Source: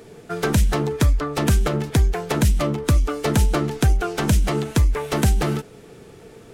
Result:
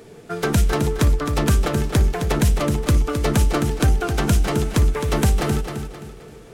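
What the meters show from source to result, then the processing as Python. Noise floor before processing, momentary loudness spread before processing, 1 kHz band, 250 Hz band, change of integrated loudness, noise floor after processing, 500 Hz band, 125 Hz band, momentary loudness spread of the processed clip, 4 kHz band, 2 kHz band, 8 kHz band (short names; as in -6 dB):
-45 dBFS, 3 LU, +0.5 dB, +1.0 dB, +0.5 dB, -43 dBFS, +0.5 dB, +0.5 dB, 7 LU, +1.0 dB, +1.0 dB, +1.0 dB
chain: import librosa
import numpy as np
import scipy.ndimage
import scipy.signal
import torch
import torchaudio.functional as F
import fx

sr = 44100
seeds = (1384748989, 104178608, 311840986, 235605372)

y = fx.echo_feedback(x, sr, ms=263, feedback_pct=38, wet_db=-7.5)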